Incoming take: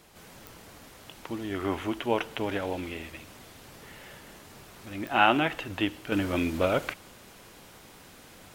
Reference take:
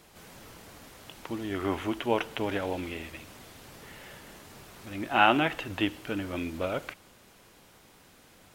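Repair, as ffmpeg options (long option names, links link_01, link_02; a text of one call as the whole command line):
ffmpeg -i in.wav -af "adeclick=threshold=4,asetnsamples=nb_out_samples=441:pad=0,asendcmd='6.12 volume volume -6dB',volume=0dB" out.wav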